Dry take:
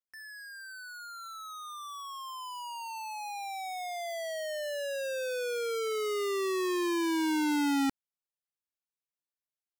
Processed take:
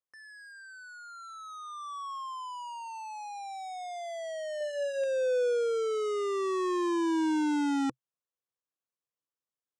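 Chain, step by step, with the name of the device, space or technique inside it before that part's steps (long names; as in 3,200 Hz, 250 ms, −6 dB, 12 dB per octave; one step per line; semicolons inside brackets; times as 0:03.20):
0:04.57–0:05.04: double-tracking delay 35 ms −7 dB
car door speaker with a rattle (loose part that buzzes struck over −50 dBFS, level −34 dBFS; loudspeaker in its box 85–8,300 Hz, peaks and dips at 130 Hz +7 dB, 320 Hz +4 dB, 500 Hz +10 dB, 1,100 Hz +7 dB, 2,300 Hz −7 dB, 4,500 Hz −7 dB)
level −3 dB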